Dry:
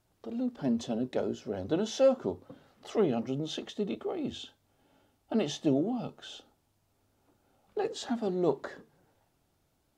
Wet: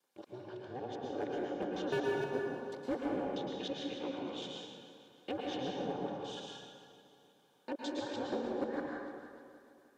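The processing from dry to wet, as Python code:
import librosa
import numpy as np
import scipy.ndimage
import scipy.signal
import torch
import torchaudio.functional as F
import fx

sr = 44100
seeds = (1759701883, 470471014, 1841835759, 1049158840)

y = fx.local_reverse(x, sr, ms=160.0)
y = fx.env_lowpass_down(y, sr, base_hz=1600.0, full_db=-27.0)
y = scipy.signal.sosfilt(scipy.signal.butter(4, 440.0, 'highpass', fs=sr, output='sos'), y)
y = fx.peak_eq(y, sr, hz=880.0, db=-7.5, octaves=0.45)
y = y * np.sin(2.0 * np.pi * 130.0 * np.arange(len(y)) / sr)
y = np.clip(y, -10.0 ** (-29.0 / 20.0), 10.0 ** (-29.0 / 20.0))
y = fx.notch_comb(y, sr, f0_hz=660.0)
y = fx.echo_feedback(y, sr, ms=309, feedback_pct=52, wet_db=-15)
y = fx.rev_plate(y, sr, seeds[0], rt60_s=1.8, hf_ratio=0.6, predelay_ms=100, drr_db=-2.0)
y = F.gain(torch.from_numpy(y), 1.0).numpy()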